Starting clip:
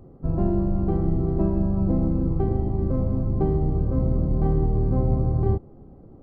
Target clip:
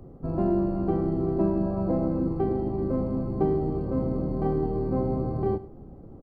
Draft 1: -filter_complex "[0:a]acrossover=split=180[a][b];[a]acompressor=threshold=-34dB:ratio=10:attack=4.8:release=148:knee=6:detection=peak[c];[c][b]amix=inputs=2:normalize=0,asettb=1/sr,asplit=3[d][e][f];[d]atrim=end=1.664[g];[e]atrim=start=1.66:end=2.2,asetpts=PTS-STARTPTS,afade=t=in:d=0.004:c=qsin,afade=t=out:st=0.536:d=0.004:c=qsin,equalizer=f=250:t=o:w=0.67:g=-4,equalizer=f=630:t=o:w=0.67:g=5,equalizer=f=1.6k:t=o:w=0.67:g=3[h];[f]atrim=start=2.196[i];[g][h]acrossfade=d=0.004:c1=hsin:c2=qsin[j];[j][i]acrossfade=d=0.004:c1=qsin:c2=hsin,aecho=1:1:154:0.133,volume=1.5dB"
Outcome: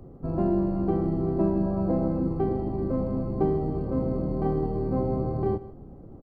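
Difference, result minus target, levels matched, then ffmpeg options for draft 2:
echo 53 ms late
-filter_complex "[0:a]acrossover=split=180[a][b];[a]acompressor=threshold=-34dB:ratio=10:attack=4.8:release=148:knee=6:detection=peak[c];[c][b]amix=inputs=2:normalize=0,asettb=1/sr,asplit=3[d][e][f];[d]atrim=end=1.664[g];[e]atrim=start=1.66:end=2.2,asetpts=PTS-STARTPTS,afade=t=in:d=0.004:c=qsin,afade=t=out:st=0.536:d=0.004:c=qsin,equalizer=f=250:t=o:w=0.67:g=-4,equalizer=f=630:t=o:w=0.67:g=5,equalizer=f=1.6k:t=o:w=0.67:g=3[h];[f]atrim=start=2.196[i];[g][h]acrossfade=d=0.004:c1=hsin:c2=qsin[j];[j][i]acrossfade=d=0.004:c1=qsin:c2=hsin,aecho=1:1:101:0.133,volume=1.5dB"

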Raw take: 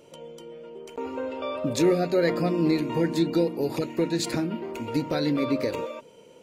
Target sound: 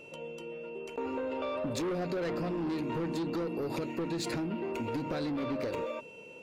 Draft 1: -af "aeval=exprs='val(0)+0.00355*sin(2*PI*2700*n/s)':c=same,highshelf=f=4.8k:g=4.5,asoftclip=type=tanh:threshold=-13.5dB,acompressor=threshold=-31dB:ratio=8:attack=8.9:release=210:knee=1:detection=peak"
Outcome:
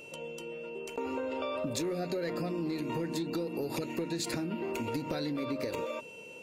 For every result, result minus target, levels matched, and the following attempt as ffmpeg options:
soft clip: distortion -13 dB; 8000 Hz band +5.5 dB
-af "aeval=exprs='val(0)+0.00355*sin(2*PI*2700*n/s)':c=same,highshelf=f=4.8k:g=4.5,asoftclip=type=tanh:threshold=-24.5dB,acompressor=threshold=-31dB:ratio=8:attack=8.9:release=210:knee=1:detection=peak"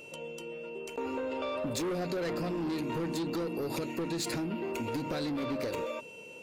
8000 Hz band +5.0 dB
-af "aeval=exprs='val(0)+0.00355*sin(2*PI*2700*n/s)':c=same,highshelf=f=4.8k:g=-7,asoftclip=type=tanh:threshold=-24.5dB,acompressor=threshold=-31dB:ratio=8:attack=8.9:release=210:knee=1:detection=peak"

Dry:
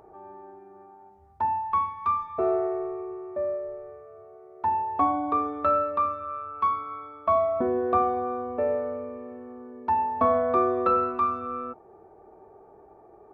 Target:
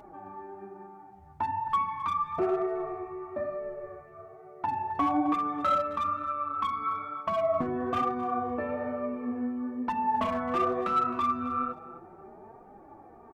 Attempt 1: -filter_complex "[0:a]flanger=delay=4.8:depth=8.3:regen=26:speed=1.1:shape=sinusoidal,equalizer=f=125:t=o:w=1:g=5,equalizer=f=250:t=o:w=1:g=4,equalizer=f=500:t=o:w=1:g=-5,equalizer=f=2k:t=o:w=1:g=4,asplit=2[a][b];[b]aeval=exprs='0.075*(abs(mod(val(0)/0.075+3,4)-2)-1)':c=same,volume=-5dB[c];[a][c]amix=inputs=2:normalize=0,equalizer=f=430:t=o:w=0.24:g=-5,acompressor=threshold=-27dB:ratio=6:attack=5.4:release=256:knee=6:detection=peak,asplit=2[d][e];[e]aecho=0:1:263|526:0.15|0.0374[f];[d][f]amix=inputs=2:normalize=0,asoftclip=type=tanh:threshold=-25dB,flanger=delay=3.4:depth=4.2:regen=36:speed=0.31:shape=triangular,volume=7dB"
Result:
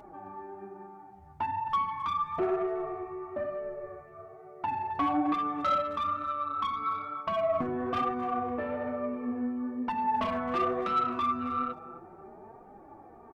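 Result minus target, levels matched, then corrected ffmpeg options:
soft clip: distortion +16 dB
-filter_complex "[0:a]flanger=delay=4.8:depth=8.3:regen=26:speed=1.1:shape=sinusoidal,equalizer=f=125:t=o:w=1:g=5,equalizer=f=250:t=o:w=1:g=4,equalizer=f=500:t=o:w=1:g=-5,equalizer=f=2k:t=o:w=1:g=4,asplit=2[a][b];[b]aeval=exprs='0.075*(abs(mod(val(0)/0.075+3,4)-2)-1)':c=same,volume=-5dB[c];[a][c]amix=inputs=2:normalize=0,equalizer=f=430:t=o:w=0.24:g=-5,acompressor=threshold=-27dB:ratio=6:attack=5.4:release=256:knee=6:detection=peak,asplit=2[d][e];[e]aecho=0:1:263|526:0.15|0.0374[f];[d][f]amix=inputs=2:normalize=0,asoftclip=type=tanh:threshold=-16dB,flanger=delay=3.4:depth=4.2:regen=36:speed=0.31:shape=triangular,volume=7dB"

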